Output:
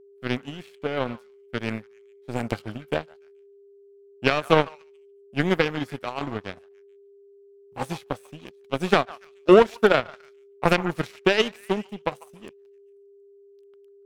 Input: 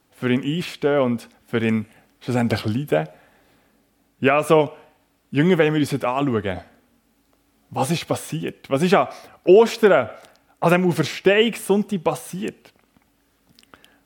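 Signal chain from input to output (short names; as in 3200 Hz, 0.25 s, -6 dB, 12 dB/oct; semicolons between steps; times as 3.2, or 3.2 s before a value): delay with a stepping band-pass 0.144 s, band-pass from 1100 Hz, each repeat 0.7 oct, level -5.5 dB; power-law curve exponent 2; whine 400 Hz -51 dBFS; gain +1.5 dB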